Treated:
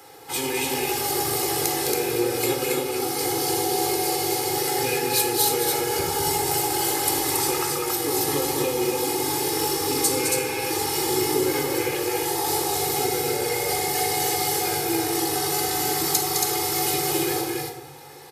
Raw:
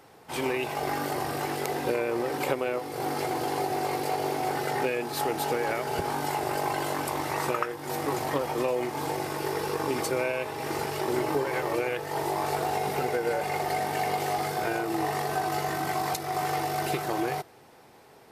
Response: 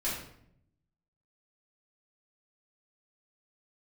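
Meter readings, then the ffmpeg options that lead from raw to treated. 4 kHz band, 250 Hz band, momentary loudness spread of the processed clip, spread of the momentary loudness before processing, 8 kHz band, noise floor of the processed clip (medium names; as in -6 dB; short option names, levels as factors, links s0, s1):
+12.0 dB, +5.0 dB, 3 LU, 3 LU, +16.5 dB, -33 dBFS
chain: -filter_complex "[0:a]highpass=84,highshelf=f=4000:g=10.5,bandreject=f=620:w=13,aecho=1:1:2.4:0.71,acrossover=split=330|3000[s0][s1][s2];[s1]acompressor=threshold=0.0112:ratio=2.5[s3];[s0][s3][s2]amix=inputs=3:normalize=0,aecho=1:1:209.9|277:0.501|0.708,asplit=2[s4][s5];[1:a]atrim=start_sample=2205,asetrate=36603,aresample=44100[s6];[s5][s6]afir=irnorm=-1:irlink=0,volume=0.447[s7];[s4][s7]amix=inputs=2:normalize=0"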